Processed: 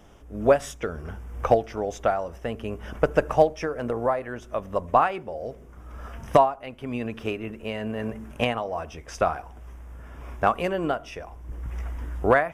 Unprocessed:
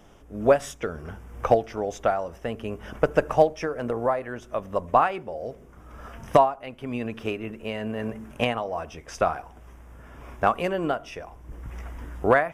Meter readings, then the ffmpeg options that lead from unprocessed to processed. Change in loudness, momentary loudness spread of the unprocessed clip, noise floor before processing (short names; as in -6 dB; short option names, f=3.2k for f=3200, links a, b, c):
0.0 dB, 18 LU, -49 dBFS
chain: -af "equalizer=f=64:t=o:w=0.56:g=6.5"